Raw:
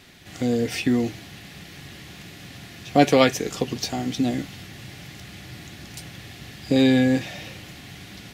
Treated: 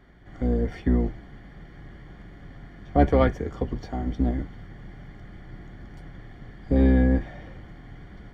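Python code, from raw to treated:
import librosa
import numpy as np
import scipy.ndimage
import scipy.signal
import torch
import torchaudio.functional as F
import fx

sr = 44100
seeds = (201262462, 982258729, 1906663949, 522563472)

y = fx.octave_divider(x, sr, octaves=2, level_db=3.0)
y = scipy.signal.savgol_filter(y, 41, 4, mode='constant')
y = y * librosa.db_to_amplitude(-4.0)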